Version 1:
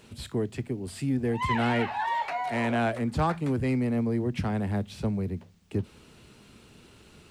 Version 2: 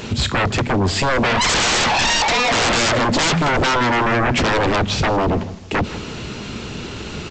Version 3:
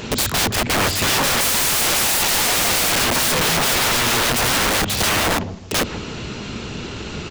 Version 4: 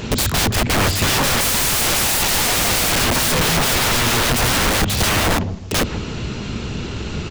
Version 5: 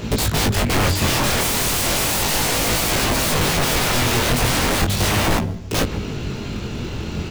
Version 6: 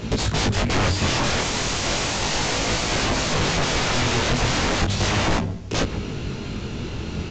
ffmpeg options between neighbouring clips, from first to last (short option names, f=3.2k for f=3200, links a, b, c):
-filter_complex "[0:a]aresample=16000,aeval=exprs='0.2*sin(PI/2*10*val(0)/0.2)':c=same,aresample=44100,asplit=2[a][b];[b]adelay=160,lowpass=f=3.9k:p=1,volume=-16dB,asplit=2[c][d];[d]adelay=160,lowpass=f=3.9k:p=1,volume=0.28,asplit=2[e][f];[f]adelay=160,lowpass=f=3.9k:p=1,volume=0.28[g];[a][c][e][g]amix=inputs=4:normalize=0"
-af "aeval=exprs='(mod(5.62*val(0)+1,2)-1)/5.62':c=same"
-af "lowshelf=f=170:g=8.5"
-filter_complex "[0:a]asplit=2[a][b];[b]acrusher=samples=24:mix=1:aa=0.000001,volume=-8dB[c];[a][c]amix=inputs=2:normalize=0,flanger=delay=18:depth=6.4:speed=0.36"
-af "volume=-2.5dB" -ar 16000 -c:a pcm_mulaw